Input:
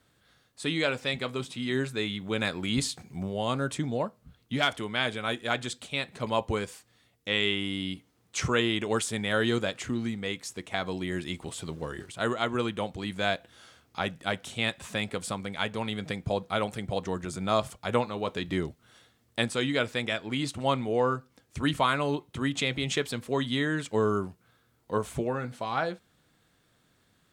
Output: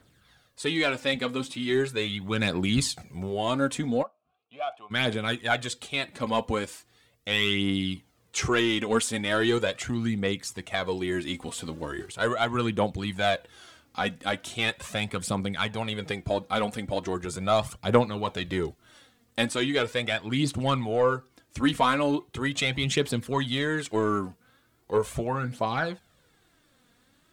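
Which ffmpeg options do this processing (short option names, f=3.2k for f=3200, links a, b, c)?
-filter_complex "[0:a]aeval=exprs='0.282*(cos(1*acos(clip(val(0)/0.282,-1,1)))-cos(1*PI/2))+0.0158*(cos(5*acos(clip(val(0)/0.282,-1,1)))-cos(5*PI/2))':c=same,asplit=3[a][b][c];[a]afade=t=out:st=4.02:d=0.02[d];[b]asplit=3[e][f][g];[e]bandpass=f=730:t=q:w=8,volume=0dB[h];[f]bandpass=f=1.09k:t=q:w=8,volume=-6dB[i];[g]bandpass=f=2.44k:t=q:w=8,volume=-9dB[j];[h][i][j]amix=inputs=3:normalize=0,afade=t=in:st=4.02:d=0.02,afade=t=out:st=4.9:d=0.02[k];[c]afade=t=in:st=4.9:d=0.02[l];[d][k][l]amix=inputs=3:normalize=0,aphaser=in_gain=1:out_gain=1:delay=4.3:decay=0.5:speed=0.39:type=triangular"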